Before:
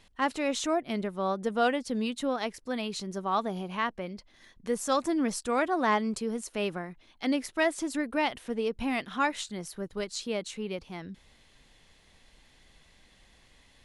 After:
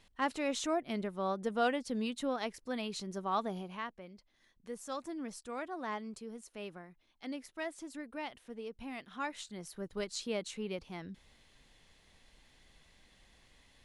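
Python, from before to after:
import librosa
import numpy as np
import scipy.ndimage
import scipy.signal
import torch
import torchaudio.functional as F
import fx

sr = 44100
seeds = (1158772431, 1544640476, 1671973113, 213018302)

y = fx.gain(x, sr, db=fx.line((3.53, -5.0), (3.96, -13.5), (8.97, -13.5), (9.97, -4.0)))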